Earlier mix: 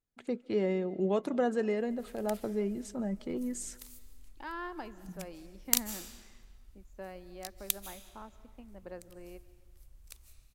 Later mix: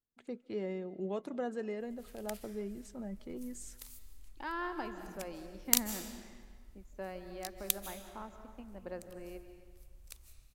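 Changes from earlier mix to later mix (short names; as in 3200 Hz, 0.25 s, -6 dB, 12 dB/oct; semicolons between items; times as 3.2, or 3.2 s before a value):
first voice -8.0 dB; second voice: send +10.0 dB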